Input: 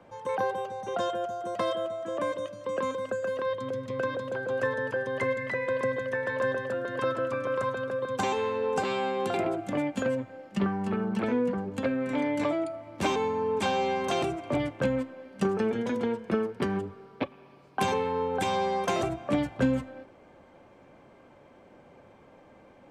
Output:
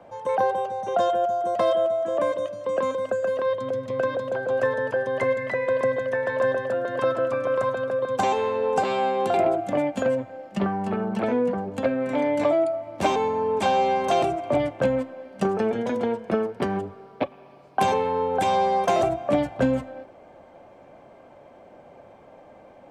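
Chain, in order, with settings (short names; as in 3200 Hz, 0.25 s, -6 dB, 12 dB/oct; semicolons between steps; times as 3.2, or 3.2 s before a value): bell 670 Hz +9.5 dB 0.71 oct; gain +1.5 dB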